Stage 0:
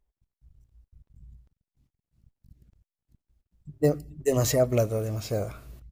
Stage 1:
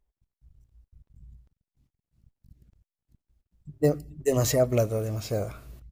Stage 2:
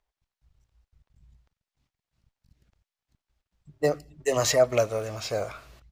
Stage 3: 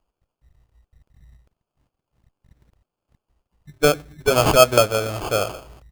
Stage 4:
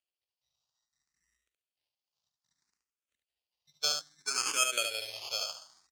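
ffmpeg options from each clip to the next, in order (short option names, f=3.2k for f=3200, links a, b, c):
-af anull
-filter_complex "[0:a]acrossover=split=580 6800:gain=0.178 1 0.2[a][b][c];[a][b][c]amix=inputs=3:normalize=0,volume=7dB"
-af "acrusher=samples=23:mix=1:aa=0.000001,volume=7.5dB"
-filter_complex "[0:a]bandpass=f=5.2k:t=q:w=1.7:csg=0,aecho=1:1:72:0.562,asplit=2[a][b];[b]afreqshift=0.62[c];[a][c]amix=inputs=2:normalize=1,volume=1.5dB"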